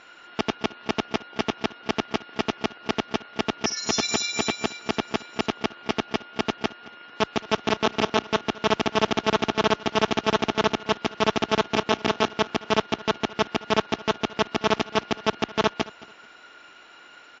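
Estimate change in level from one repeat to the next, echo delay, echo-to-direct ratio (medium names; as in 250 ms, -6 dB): -11.5 dB, 220 ms, -19.5 dB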